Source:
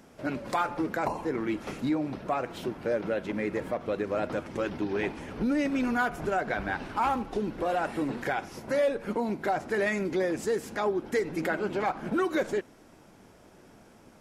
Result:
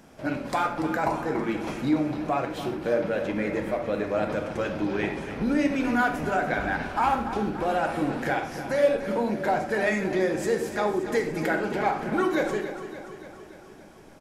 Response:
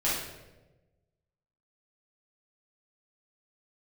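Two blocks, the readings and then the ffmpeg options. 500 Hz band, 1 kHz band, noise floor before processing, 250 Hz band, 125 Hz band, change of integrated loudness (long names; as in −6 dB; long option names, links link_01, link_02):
+3.0 dB, +4.0 dB, −55 dBFS, +3.5 dB, +4.5 dB, +3.5 dB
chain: -filter_complex "[0:a]aecho=1:1:288|576|864|1152|1440|1728|2016:0.266|0.16|0.0958|0.0575|0.0345|0.0207|0.0124,asplit=2[link_01][link_02];[1:a]atrim=start_sample=2205,atrim=end_sample=6174[link_03];[link_02][link_03]afir=irnorm=-1:irlink=0,volume=-11.5dB[link_04];[link_01][link_04]amix=inputs=2:normalize=0"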